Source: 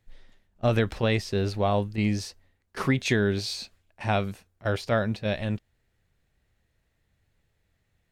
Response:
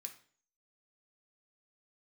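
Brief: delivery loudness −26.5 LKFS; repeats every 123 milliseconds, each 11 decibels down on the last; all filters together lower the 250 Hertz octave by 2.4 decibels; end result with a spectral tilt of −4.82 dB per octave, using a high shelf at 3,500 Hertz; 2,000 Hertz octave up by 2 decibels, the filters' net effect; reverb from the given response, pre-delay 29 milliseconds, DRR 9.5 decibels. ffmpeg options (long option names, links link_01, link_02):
-filter_complex "[0:a]equalizer=frequency=250:width_type=o:gain=-3,equalizer=frequency=2000:width_type=o:gain=3.5,highshelf=frequency=3500:gain=-3.5,aecho=1:1:123|246|369:0.282|0.0789|0.0221,asplit=2[link_01][link_02];[1:a]atrim=start_sample=2205,adelay=29[link_03];[link_02][link_03]afir=irnorm=-1:irlink=0,volume=-3.5dB[link_04];[link_01][link_04]amix=inputs=2:normalize=0,volume=1dB"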